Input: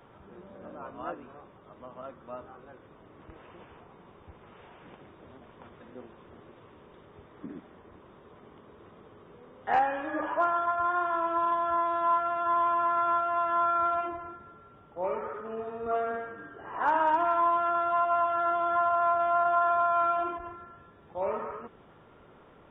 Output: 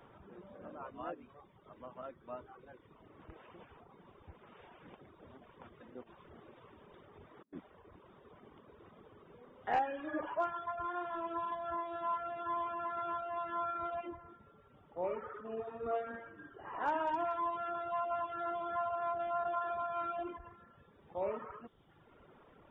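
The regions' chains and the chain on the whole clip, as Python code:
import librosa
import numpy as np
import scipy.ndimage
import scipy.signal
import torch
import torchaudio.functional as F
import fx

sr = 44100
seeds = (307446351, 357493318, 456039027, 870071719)

y = fx.chain(x, sr, fx.hum_notches(base_hz=50, count=10),
    fx.over_compress(threshold_db=-51.0, ratio=-0.5), at=(6.02, 7.53))
y = fx.dereverb_blind(y, sr, rt60_s=1.1)
y = fx.dynamic_eq(y, sr, hz=1200.0, q=1.1, threshold_db=-41.0, ratio=4.0, max_db=-7)
y = y * librosa.db_to_amplitude(-3.0)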